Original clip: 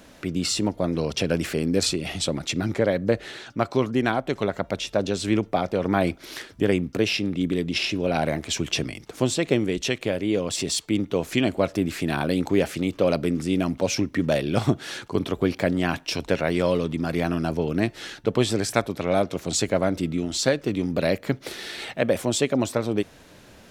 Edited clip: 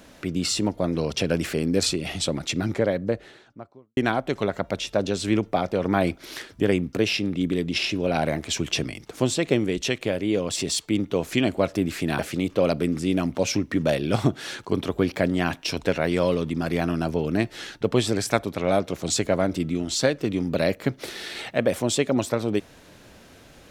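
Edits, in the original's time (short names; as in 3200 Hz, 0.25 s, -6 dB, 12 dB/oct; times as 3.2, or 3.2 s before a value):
2.59–3.97 studio fade out
12.19–12.62 cut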